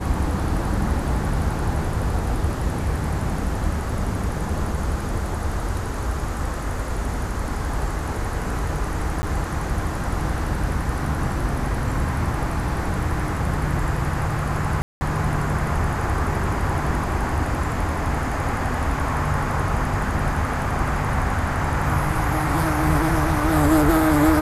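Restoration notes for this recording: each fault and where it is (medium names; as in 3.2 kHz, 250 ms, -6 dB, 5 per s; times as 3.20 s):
9.22–9.23 s: dropout 10 ms
14.82–15.01 s: dropout 190 ms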